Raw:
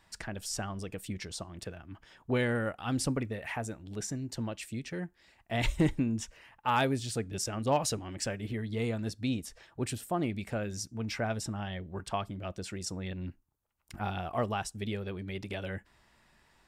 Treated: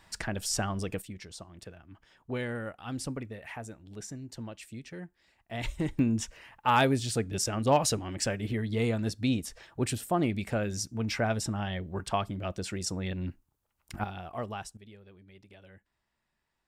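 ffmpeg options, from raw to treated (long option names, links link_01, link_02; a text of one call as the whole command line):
ffmpeg -i in.wav -af "asetnsamples=nb_out_samples=441:pad=0,asendcmd='1.02 volume volume -5dB;5.99 volume volume 4dB;14.04 volume volume -5dB;14.77 volume volume -16.5dB',volume=5.5dB" out.wav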